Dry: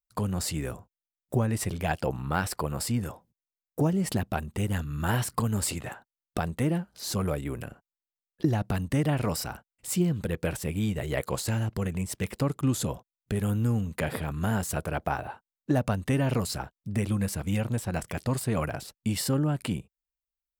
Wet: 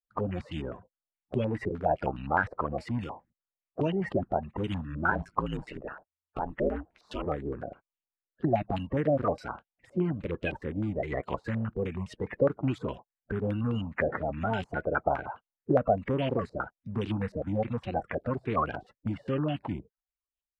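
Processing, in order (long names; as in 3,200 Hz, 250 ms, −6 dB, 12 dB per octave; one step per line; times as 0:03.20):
spectral magnitudes quantised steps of 30 dB
0:05.10–0:07.25: ring modulation 46 Hz → 140 Hz
low-pass on a step sequencer 9.7 Hz 540–2,900 Hz
level −3.5 dB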